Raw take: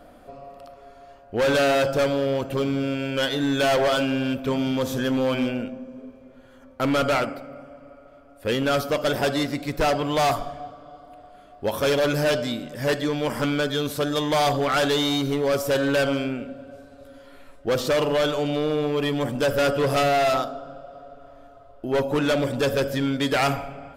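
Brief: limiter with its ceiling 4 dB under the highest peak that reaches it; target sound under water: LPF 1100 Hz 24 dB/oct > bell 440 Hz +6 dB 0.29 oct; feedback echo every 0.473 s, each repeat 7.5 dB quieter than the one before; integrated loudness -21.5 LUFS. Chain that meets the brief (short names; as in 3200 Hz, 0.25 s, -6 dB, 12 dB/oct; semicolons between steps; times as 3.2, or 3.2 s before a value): limiter -21 dBFS; LPF 1100 Hz 24 dB/oct; bell 440 Hz +6 dB 0.29 oct; feedback echo 0.473 s, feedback 42%, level -7.5 dB; gain +4.5 dB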